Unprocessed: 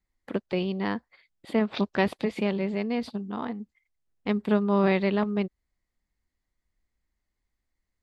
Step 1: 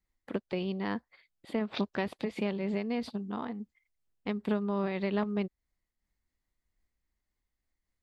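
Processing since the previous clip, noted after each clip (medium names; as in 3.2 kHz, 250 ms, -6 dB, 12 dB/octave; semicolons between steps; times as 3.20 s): compression, threshold -24 dBFS, peak gain reduction 7 dB; random flutter of the level, depth 60%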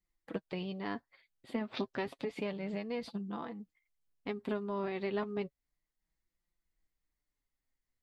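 flange 0.31 Hz, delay 5.7 ms, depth 2.4 ms, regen +30%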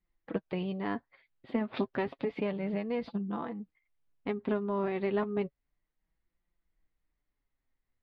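distance through air 320 m; trim +5.5 dB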